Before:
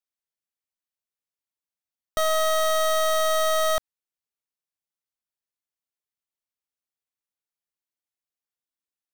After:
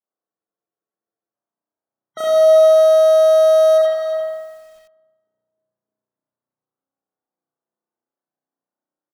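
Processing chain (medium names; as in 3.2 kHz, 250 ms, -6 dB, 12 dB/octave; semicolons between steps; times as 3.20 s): rattle on loud lows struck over -44 dBFS, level -41 dBFS; level-controlled noise filter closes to 890 Hz, open at -25 dBFS; Bessel high-pass 170 Hz, order 4; peak limiter -25 dBFS, peak gain reduction 10.5 dB; echo from a far wall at 61 m, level -8 dB; loudest bins only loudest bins 64; on a send: bucket-brigade echo 306 ms, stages 1024, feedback 78%, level -21.5 dB; on the sum: spring tank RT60 1.4 s, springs 33 ms, chirp 50 ms, DRR -9.5 dB; spectral freeze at 0.30 s, 1.03 s; bit-crushed delay 85 ms, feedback 35%, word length 9-bit, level -5 dB; trim +4 dB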